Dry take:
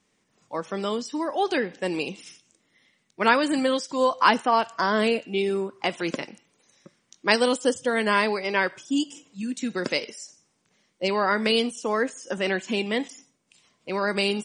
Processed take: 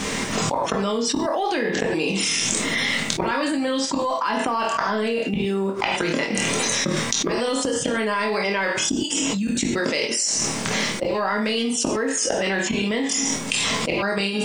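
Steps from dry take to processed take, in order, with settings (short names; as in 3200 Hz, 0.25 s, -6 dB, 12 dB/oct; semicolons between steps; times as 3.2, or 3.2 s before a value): ending faded out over 0.71 s; high shelf 8400 Hz -3 dB; in parallel at -11 dB: soft clip -18.5 dBFS, distortion -11 dB; on the sum: short-mantissa float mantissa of 6-bit; on a send: flutter echo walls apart 4.4 m, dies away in 0.21 s; on the sum: flipped gate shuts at -20 dBFS, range -33 dB; non-linear reverb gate 0.13 s falling, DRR 4 dB; fast leveller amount 100%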